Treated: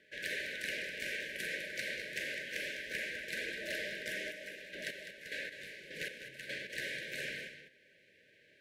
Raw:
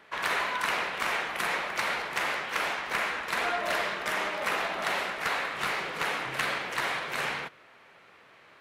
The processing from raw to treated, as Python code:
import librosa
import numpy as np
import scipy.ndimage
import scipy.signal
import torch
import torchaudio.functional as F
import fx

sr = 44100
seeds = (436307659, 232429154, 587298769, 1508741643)

y = fx.chopper(x, sr, hz=1.7, depth_pct=65, duty_pct=30, at=(4.14, 6.73))
y = fx.brickwall_bandstop(y, sr, low_hz=640.0, high_hz=1500.0)
y = y + 10.0 ** (-10.0 / 20.0) * np.pad(y, (int(203 * sr / 1000.0), 0))[:len(y)]
y = F.gain(torch.from_numpy(y), -8.0).numpy()